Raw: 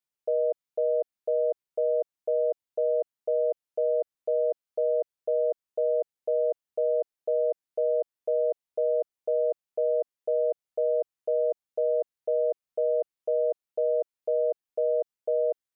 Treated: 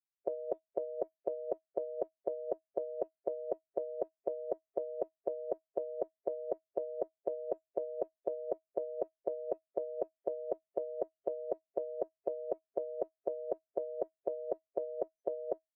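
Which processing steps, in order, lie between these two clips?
parametric band 380 Hz +4 dB
tuned comb filter 320 Hz, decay 0.2 s, harmonics all, mix 60%
noise reduction from a noise print of the clip's start 28 dB
level +15.5 dB

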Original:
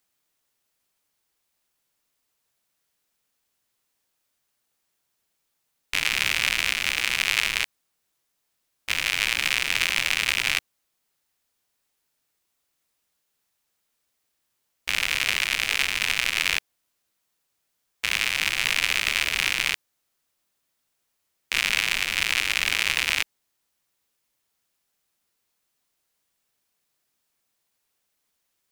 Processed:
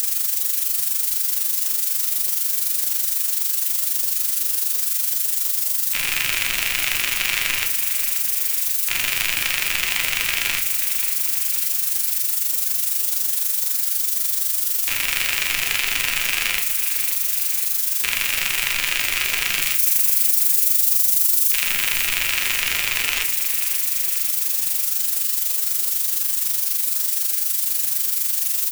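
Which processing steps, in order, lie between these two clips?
spike at every zero crossing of −20.5 dBFS
0:19.61–0:21.62: high-shelf EQ 3,500 Hz +9 dB
brickwall limiter −7 dBFS, peak gain reduction 9 dB
amplitude modulation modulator 24 Hz, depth 70%
repeating echo 533 ms, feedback 51%, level −12 dB
rectangular room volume 48 cubic metres, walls mixed, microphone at 0.38 metres
envelope flattener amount 50%

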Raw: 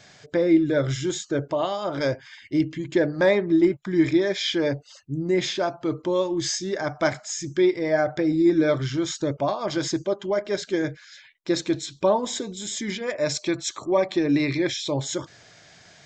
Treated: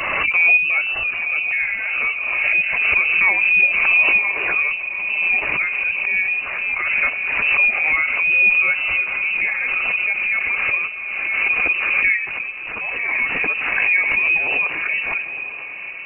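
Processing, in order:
spectral magnitudes quantised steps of 15 dB
in parallel at −5 dB: sample-and-hold swept by an LFO 13×, swing 60% 1.7 Hz
on the sum: feedback delay with all-pass diffusion 986 ms, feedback 54%, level −10 dB
voice inversion scrambler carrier 2,800 Hz
background raised ahead of every attack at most 24 dB per second
level −1.5 dB

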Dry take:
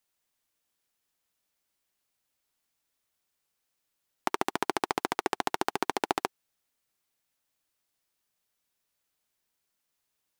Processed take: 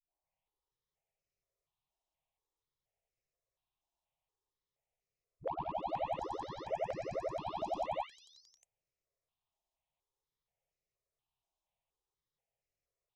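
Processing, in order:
every frequency bin delayed by itself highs late, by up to 570 ms
notch filter 5,700 Hz, Q 7.4
hard clipping −30 dBFS, distortion −13 dB
phaser with its sweep stopped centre 790 Hz, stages 4
speed change −21%
head-to-tape spacing loss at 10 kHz 27 dB
step-sequenced phaser 4.2 Hz 480–3,400 Hz
level +4.5 dB

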